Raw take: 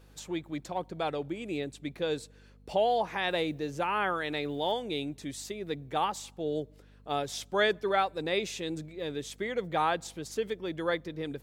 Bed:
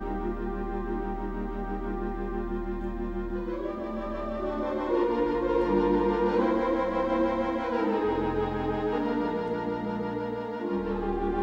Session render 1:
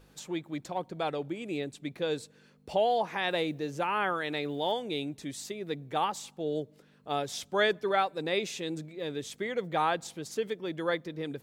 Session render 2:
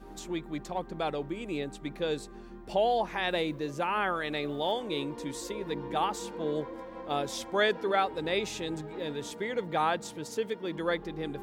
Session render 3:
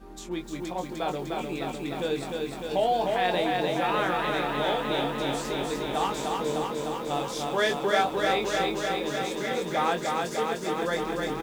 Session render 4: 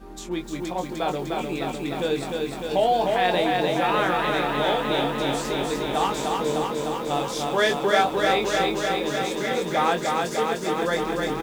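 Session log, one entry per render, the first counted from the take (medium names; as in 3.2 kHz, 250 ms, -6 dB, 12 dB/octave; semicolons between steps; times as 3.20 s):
de-hum 50 Hz, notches 2
add bed -15.5 dB
doubling 22 ms -5.5 dB; bit-crushed delay 302 ms, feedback 80%, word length 9-bit, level -3 dB
trim +4 dB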